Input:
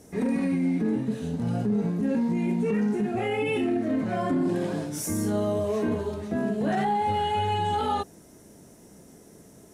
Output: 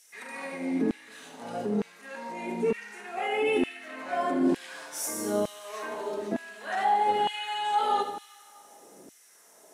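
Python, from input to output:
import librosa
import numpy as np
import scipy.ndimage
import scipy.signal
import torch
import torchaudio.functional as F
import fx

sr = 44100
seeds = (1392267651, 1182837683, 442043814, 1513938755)

y = fx.echo_feedback(x, sr, ms=76, feedback_pct=52, wet_db=-10.0)
y = fx.rev_schroeder(y, sr, rt60_s=2.2, comb_ms=27, drr_db=11.5)
y = fx.filter_lfo_highpass(y, sr, shape='saw_down', hz=1.1, low_hz=270.0, high_hz=2700.0, q=1.2)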